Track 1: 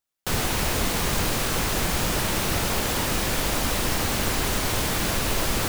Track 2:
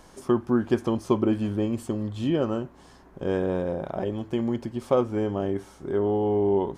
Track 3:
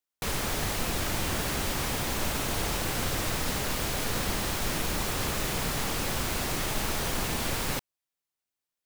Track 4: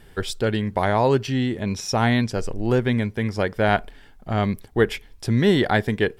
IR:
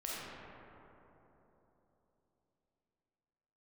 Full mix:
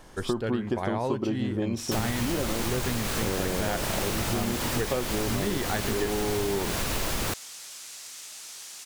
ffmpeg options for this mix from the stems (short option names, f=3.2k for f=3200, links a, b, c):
-filter_complex "[0:a]adelay=1650,volume=-2dB[a];[1:a]volume=-0.5dB[b];[2:a]bandpass=f=6.9k:t=q:w=1.3:csg=0,adelay=1550,volume=-6.5dB,asplit=2[c][d];[d]volume=-3dB[e];[3:a]volume=-6dB[f];[4:a]atrim=start_sample=2205[g];[e][g]afir=irnorm=-1:irlink=0[h];[a][b][c][f][h]amix=inputs=5:normalize=0,acompressor=threshold=-24dB:ratio=6"